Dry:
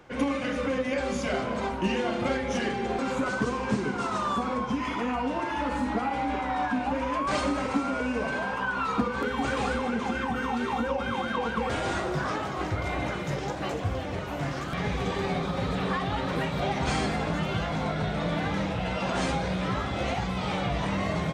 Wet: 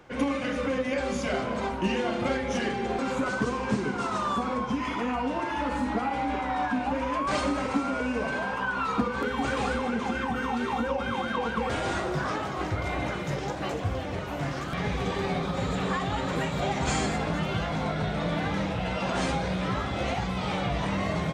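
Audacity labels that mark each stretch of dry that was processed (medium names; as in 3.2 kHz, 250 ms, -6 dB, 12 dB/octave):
15.540000	17.180000	peaking EQ 7.2 kHz +12 dB 0.21 oct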